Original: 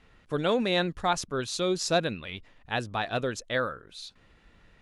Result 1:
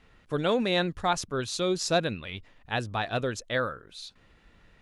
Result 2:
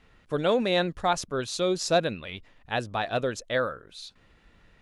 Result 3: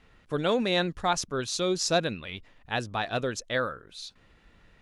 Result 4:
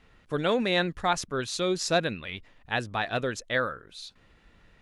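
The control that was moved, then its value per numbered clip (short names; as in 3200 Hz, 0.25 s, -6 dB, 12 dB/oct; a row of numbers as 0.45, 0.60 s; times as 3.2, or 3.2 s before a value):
dynamic EQ, frequency: 100, 590, 5800, 1900 Hz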